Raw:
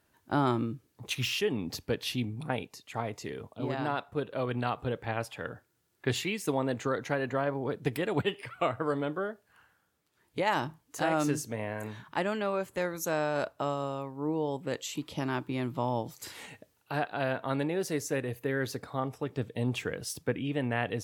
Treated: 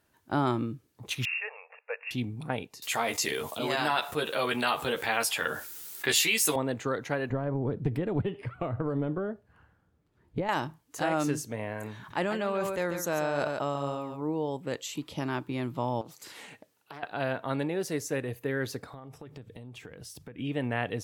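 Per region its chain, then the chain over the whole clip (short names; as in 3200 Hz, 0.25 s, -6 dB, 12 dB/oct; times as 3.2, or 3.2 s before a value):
1.25–2.11 brick-wall FIR band-pass 440–2800 Hz + tilt +3.5 dB/oct
2.82–6.56 tilt +4 dB/oct + doubler 13 ms -4 dB + fast leveller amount 50%
7.3–10.49 compressor 3:1, threshold -33 dBFS + tilt -4 dB/oct
11.96–14.22 echo 0.142 s -9.5 dB + sustainer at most 35 dB/s
16.01–17.03 HPF 160 Hz + compressor 4:1, threshold -41 dBFS + Doppler distortion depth 0.28 ms
18.9–20.39 low shelf 85 Hz +9.5 dB + notches 50/100/150 Hz + compressor 12:1, threshold -41 dBFS
whole clip: dry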